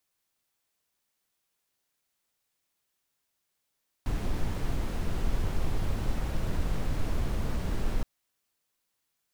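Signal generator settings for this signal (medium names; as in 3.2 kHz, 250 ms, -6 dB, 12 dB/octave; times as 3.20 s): noise brown, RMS -27 dBFS 3.97 s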